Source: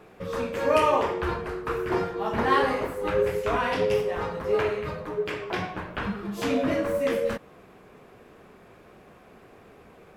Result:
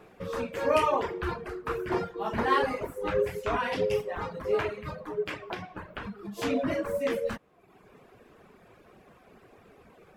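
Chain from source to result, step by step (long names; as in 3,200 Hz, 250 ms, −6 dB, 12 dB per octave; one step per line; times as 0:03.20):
reverb reduction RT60 0.87 s
0:05.53–0:06.39: downward compressor 6 to 1, threshold −33 dBFS, peak gain reduction 7.5 dB
level −2 dB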